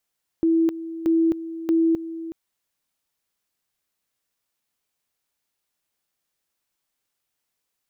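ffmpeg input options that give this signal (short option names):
-f lavfi -i "aevalsrc='pow(10,(-15.5-14*gte(mod(t,0.63),0.26))/20)*sin(2*PI*328*t)':d=1.89:s=44100"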